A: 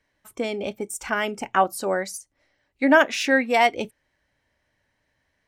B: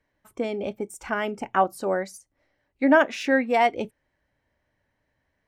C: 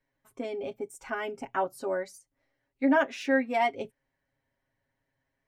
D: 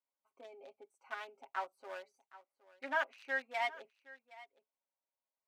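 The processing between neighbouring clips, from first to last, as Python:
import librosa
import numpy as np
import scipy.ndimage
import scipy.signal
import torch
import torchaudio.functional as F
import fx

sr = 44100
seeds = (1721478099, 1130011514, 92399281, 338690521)

y1 = fx.high_shelf(x, sr, hz=2100.0, db=-10.0)
y2 = y1 + 0.82 * np.pad(y1, (int(7.4 * sr / 1000.0), 0))[:len(y1)]
y2 = F.gain(torch.from_numpy(y2), -8.5).numpy()
y3 = fx.wiener(y2, sr, points=25)
y3 = scipy.signal.sosfilt(scipy.signal.butter(2, 1100.0, 'highpass', fs=sr, output='sos'), y3)
y3 = y3 + 10.0 ** (-19.0 / 20.0) * np.pad(y3, (int(767 * sr / 1000.0), 0))[:len(y3)]
y3 = F.gain(torch.from_numpy(y3), -3.5).numpy()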